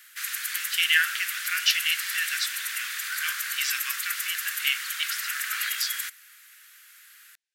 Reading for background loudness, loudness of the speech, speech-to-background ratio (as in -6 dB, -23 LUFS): -29.5 LUFS, -27.5 LUFS, 2.0 dB